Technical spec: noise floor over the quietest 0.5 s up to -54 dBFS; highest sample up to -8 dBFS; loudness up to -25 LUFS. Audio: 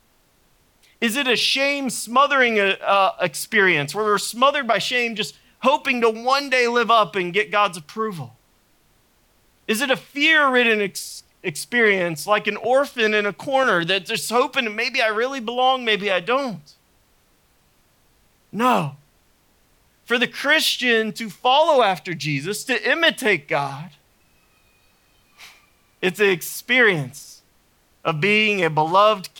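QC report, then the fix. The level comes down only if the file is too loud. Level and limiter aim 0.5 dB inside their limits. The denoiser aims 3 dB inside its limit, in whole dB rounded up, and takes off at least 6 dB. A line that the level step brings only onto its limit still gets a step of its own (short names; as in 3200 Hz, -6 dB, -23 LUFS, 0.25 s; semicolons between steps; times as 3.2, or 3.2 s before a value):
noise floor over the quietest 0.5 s -60 dBFS: OK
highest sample -6.0 dBFS: fail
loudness -19.0 LUFS: fail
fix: gain -6.5 dB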